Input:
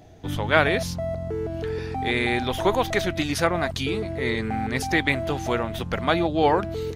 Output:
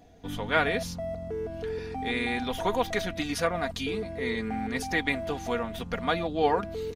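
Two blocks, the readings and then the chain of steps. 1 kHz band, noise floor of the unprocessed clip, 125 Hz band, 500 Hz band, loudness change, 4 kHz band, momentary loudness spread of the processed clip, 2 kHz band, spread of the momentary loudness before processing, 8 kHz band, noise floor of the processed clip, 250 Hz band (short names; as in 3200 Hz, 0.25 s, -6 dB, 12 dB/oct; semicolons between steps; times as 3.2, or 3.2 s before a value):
-5.0 dB, -33 dBFS, -9.0 dB, -5.0 dB, -5.5 dB, -5.5 dB, 9 LU, -5.0 dB, 9 LU, -5.0 dB, -40 dBFS, -5.5 dB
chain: comb 4.2 ms, depth 59%; gain -6.5 dB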